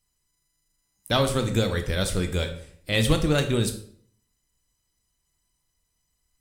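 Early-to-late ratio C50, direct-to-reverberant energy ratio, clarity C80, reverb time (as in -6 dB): 10.5 dB, 6.5 dB, 14.0 dB, 0.60 s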